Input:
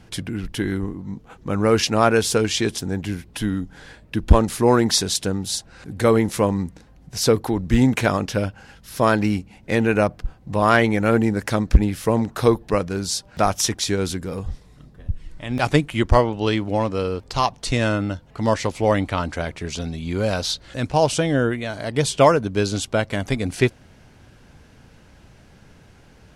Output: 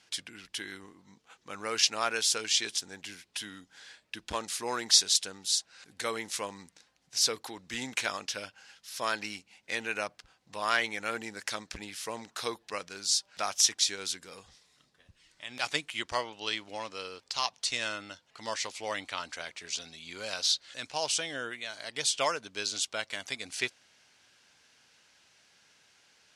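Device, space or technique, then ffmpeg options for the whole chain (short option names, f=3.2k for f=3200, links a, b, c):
piezo pickup straight into a mixer: -af "lowpass=5.7k,aderivative,volume=4dB"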